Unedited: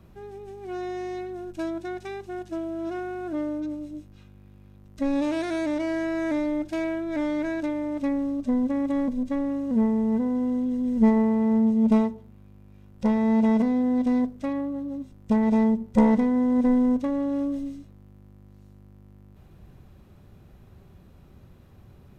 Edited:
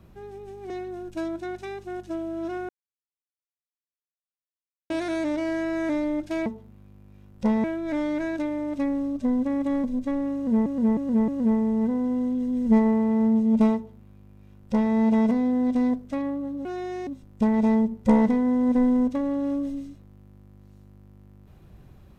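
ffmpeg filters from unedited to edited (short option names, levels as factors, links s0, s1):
-filter_complex "[0:a]asplit=11[s0][s1][s2][s3][s4][s5][s6][s7][s8][s9][s10];[s0]atrim=end=0.702[s11];[s1]atrim=start=1.118:end=3.11,asetpts=PTS-STARTPTS,afade=t=out:st=1.988:d=0.004:c=hsin[s12];[s2]atrim=start=3.11:end=5.32,asetpts=PTS-STARTPTS,volume=0[s13];[s3]atrim=start=5.32:end=6.882,asetpts=PTS-STARTPTS,afade=t=in:d=0.004:c=hsin[s14];[s4]atrim=start=12.058:end=13.242[s15];[s5]atrim=start=6.878:end=9.902[s16];[s6]atrim=start=9.588:end=9.902[s17];[s7]atrim=start=9.588:end=9.902[s18];[s8]atrim=start=9.588:end=14.962[s19];[s9]atrim=start=0.698:end=1.122[s20];[s10]atrim=start=14.958[s21];[s12][s13][s14]concat=n=3:v=0:a=1[s22];[s11][s22]acrossfade=d=0.004:c1=hsin:c2=hsin[s23];[s23][s15]acrossfade=d=0.004:c1=hsin:c2=hsin[s24];[s24][s16]acrossfade=d=0.004:c1=hsin:c2=hsin[s25];[s25][s17]acrossfade=d=0.004:c1=hsin:c2=hsin[s26];[s26][s18]acrossfade=d=0.004:c1=hsin:c2=hsin[s27];[s27][s19]acrossfade=d=0.004:c1=hsin:c2=hsin[s28];[s28][s20]acrossfade=d=0.004:c1=hsin:c2=hsin[s29];[s29][s21]acrossfade=d=0.004:c1=hsin:c2=hsin"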